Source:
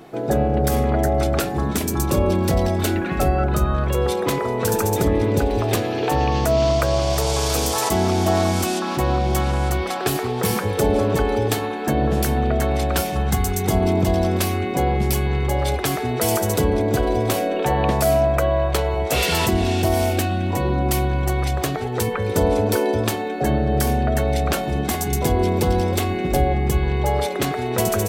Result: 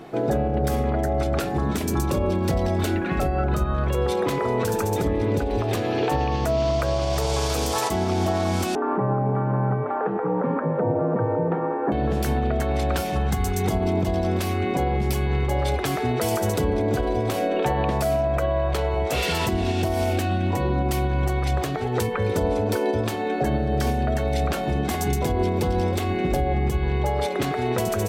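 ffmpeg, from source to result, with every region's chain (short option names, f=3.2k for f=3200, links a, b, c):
-filter_complex "[0:a]asettb=1/sr,asplit=3[a][b][c];[a]atrim=end=8.754[d];[b]atrim=start=8.75:end=11.92,asetpts=PTS-STARTPTS,afade=t=in:d=0.004:c=qsin,afade=t=out:st=3.166:d=0.004:c=qsin,lowpass=f=1.4k:w=0.5412,lowpass=f=1.4k:w=1.3066,afreqshift=59[e];[c]atrim=start=11.916[f];[d][e]acrossfade=d=0.004:c1=hsin:c2=qsin[g];[g][f]acrossfade=d=0.004:c1=qsin:c2=hsin,asettb=1/sr,asplit=3[h][i][j];[h]atrim=end=23.514[k];[i]atrim=start=23.51:end=24.47,asetpts=PTS-STARTPTS,afade=t=in:d=0.004:c=qsin,afade=t=out:st=0.956:d=0.004:c=qsin,acrossover=split=6100[l][m];[m]acompressor=threshold=-42dB:ratio=4:attack=1:release=60[n];[l][n]amix=inputs=2:normalize=0,highshelf=f=5.9k:g=9.5[o];[j]atrim=start=24.466[p];[k][o]acrossfade=d=0.004:c1=hsin:c2=qsin[q];[q][p]acrossfade=d=0.004:c1=qsin:c2=hsin,highshelf=f=6.7k:g=-7.5,alimiter=limit=-16dB:level=0:latency=1:release=255,volume=2dB"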